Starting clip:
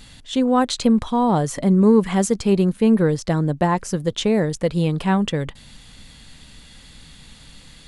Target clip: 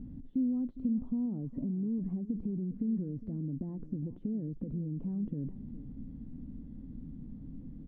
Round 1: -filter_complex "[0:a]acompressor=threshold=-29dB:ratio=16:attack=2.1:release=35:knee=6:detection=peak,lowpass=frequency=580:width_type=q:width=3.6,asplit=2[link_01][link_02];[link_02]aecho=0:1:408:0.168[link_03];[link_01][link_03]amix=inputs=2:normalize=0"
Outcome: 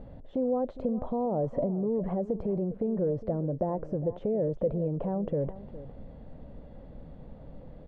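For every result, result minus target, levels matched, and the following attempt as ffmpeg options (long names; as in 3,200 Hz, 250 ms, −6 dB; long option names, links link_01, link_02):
500 Hz band +14.5 dB; downward compressor: peak gain reduction −7.5 dB
-filter_complex "[0:a]acompressor=threshold=-29dB:ratio=16:attack=2.1:release=35:knee=6:detection=peak,lowpass=frequency=260:width_type=q:width=3.6,asplit=2[link_01][link_02];[link_02]aecho=0:1:408:0.168[link_03];[link_01][link_03]amix=inputs=2:normalize=0"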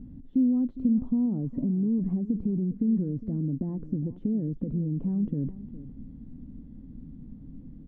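downward compressor: peak gain reduction −7.5 dB
-filter_complex "[0:a]acompressor=threshold=-37dB:ratio=16:attack=2.1:release=35:knee=6:detection=peak,lowpass=frequency=260:width_type=q:width=3.6,asplit=2[link_01][link_02];[link_02]aecho=0:1:408:0.168[link_03];[link_01][link_03]amix=inputs=2:normalize=0"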